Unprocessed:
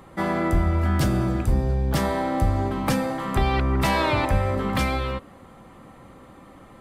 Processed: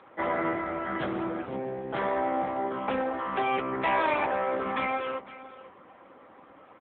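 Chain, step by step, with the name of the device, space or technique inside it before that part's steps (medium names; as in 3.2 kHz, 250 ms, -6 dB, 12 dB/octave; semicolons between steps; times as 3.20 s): satellite phone (band-pass 370–3200 Hz; delay 505 ms -16.5 dB; AMR-NB 6.7 kbps 8 kHz)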